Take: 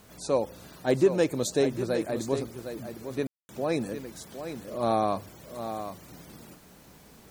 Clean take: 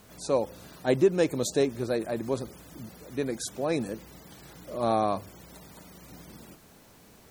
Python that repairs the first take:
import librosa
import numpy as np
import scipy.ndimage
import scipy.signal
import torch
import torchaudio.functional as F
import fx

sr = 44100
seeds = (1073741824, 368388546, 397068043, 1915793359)

y = fx.fix_declip(x, sr, threshold_db=-13.0)
y = fx.fix_ambience(y, sr, seeds[0], print_start_s=6.59, print_end_s=7.09, start_s=3.27, end_s=3.49)
y = fx.fix_echo_inverse(y, sr, delay_ms=759, level_db=-9.5)